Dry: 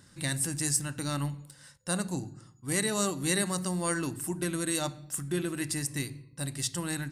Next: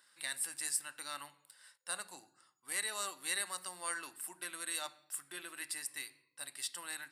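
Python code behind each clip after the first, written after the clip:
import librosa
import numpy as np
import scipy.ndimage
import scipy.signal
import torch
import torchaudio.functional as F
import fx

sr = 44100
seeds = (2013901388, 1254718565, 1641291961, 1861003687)

y = scipy.signal.sosfilt(scipy.signal.butter(2, 1000.0, 'highpass', fs=sr, output='sos'), x)
y = fx.peak_eq(y, sr, hz=6400.0, db=-11.0, octaves=0.38)
y = F.gain(torch.from_numpy(y), -4.5).numpy()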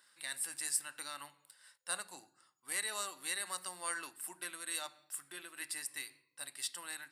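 y = fx.am_noise(x, sr, seeds[0], hz=5.7, depth_pct=55)
y = F.gain(torch.from_numpy(y), 2.0).numpy()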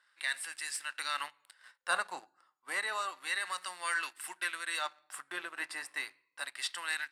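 y = fx.leveller(x, sr, passes=2)
y = fx.rider(y, sr, range_db=4, speed_s=0.5)
y = fx.filter_lfo_bandpass(y, sr, shape='sine', hz=0.31, low_hz=970.0, high_hz=2200.0, q=0.88)
y = F.gain(torch.from_numpy(y), 3.5).numpy()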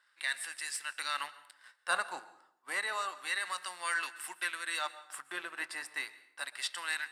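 y = fx.rev_plate(x, sr, seeds[1], rt60_s=0.7, hf_ratio=0.75, predelay_ms=110, drr_db=16.5)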